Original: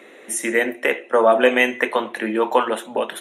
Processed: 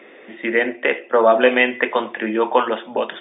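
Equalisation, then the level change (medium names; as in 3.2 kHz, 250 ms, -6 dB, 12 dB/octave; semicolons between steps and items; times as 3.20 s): brick-wall FIR low-pass 3.7 kHz; +1.0 dB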